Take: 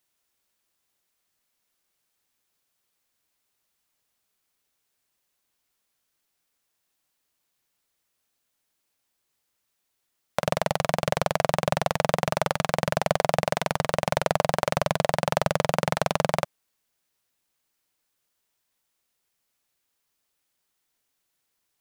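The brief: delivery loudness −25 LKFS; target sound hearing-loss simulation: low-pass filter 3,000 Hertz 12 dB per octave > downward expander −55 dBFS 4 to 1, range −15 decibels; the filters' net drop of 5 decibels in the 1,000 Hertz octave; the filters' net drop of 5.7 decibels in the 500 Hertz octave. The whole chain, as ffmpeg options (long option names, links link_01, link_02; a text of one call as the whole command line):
ffmpeg -i in.wav -af "lowpass=3000,equalizer=frequency=500:width_type=o:gain=-5.5,equalizer=frequency=1000:width_type=o:gain=-4.5,agate=range=-15dB:threshold=-55dB:ratio=4,volume=5dB" out.wav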